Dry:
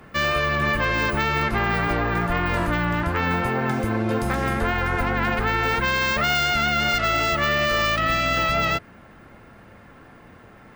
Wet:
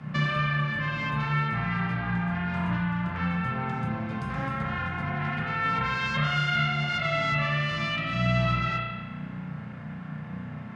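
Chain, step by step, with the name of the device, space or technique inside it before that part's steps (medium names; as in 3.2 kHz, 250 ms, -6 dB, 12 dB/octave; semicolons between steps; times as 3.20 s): jukebox (low-pass 5.6 kHz 12 dB/octave; resonant low shelf 240 Hz +14 dB, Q 3; compression 4:1, threshold -20 dBFS, peak gain reduction 13.5 dB); high-pass 210 Hz 12 dB/octave; spring tank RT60 1.2 s, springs 33 ms, chirp 55 ms, DRR -4 dB; trim -2 dB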